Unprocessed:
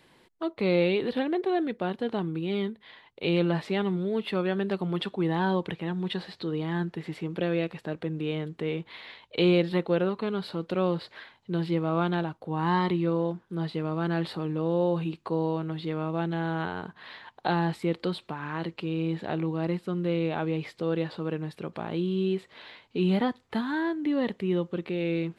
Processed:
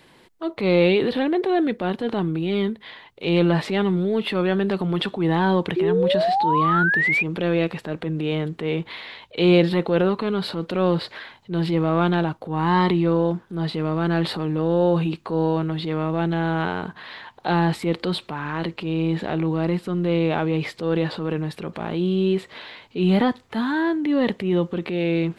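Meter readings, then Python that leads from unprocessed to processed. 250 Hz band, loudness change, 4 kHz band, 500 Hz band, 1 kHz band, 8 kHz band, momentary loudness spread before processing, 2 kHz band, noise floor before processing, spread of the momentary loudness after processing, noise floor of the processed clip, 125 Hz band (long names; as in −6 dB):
+6.5 dB, +7.0 dB, +7.0 dB, +6.5 dB, +8.5 dB, can't be measured, 9 LU, +10.0 dB, −63 dBFS, 10 LU, −53 dBFS, +6.5 dB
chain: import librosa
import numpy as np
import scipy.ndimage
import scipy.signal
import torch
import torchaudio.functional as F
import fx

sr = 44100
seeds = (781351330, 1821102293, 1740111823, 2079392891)

y = fx.transient(x, sr, attack_db=-6, sustain_db=4)
y = fx.spec_paint(y, sr, seeds[0], shape='rise', start_s=5.76, length_s=1.47, low_hz=350.0, high_hz=2500.0, level_db=-27.0)
y = y * 10.0 ** (7.0 / 20.0)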